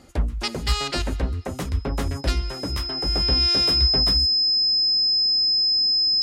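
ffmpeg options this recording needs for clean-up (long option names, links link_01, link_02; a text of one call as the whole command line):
ffmpeg -i in.wav -af "bandreject=frequency=5100:width=30" out.wav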